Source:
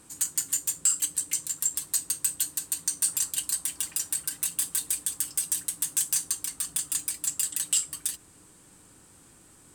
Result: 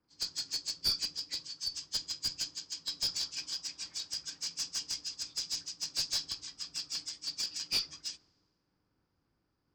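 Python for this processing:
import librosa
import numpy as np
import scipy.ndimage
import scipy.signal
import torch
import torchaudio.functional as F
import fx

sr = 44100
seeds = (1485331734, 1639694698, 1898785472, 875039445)

y = fx.freq_compress(x, sr, knee_hz=1700.0, ratio=1.5)
y = fx.clip_asym(y, sr, top_db=-23.0, bottom_db=-17.5)
y = fx.band_widen(y, sr, depth_pct=100)
y = F.gain(torch.from_numpy(y), -7.0).numpy()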